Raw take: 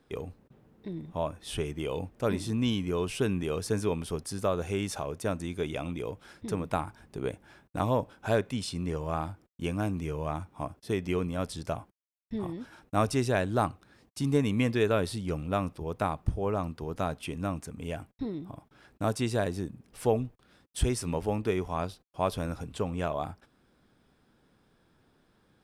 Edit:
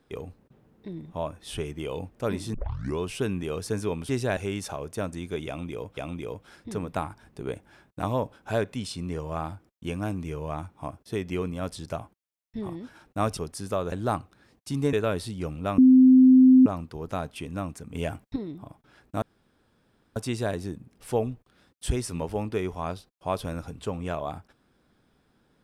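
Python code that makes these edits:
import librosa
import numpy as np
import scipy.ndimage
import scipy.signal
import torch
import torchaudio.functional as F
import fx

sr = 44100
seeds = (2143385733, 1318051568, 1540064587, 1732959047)

y = fx.edit(x, sr, fx.tape_start(start_s=2.54, length_s=0.45),
    fx.swap(start_s=4.09, length_s=0.55, other_s=13.14, other_length_s=0.28),
    fx.repeat(start_s=5.74, length_s=0.5, count=2),
    fx.cut(start_s=14.43, length_s=0.37),
    fx.bleep(start_s=15.65, length_s=0.88, hz=258.0, db=-11.0),
    fx.clip_gain(start_s=17.82, length_s=0.41, db=5.5),
    fx.insert_room_tone(at_s=19.09, length_s=0.94), tone=tone)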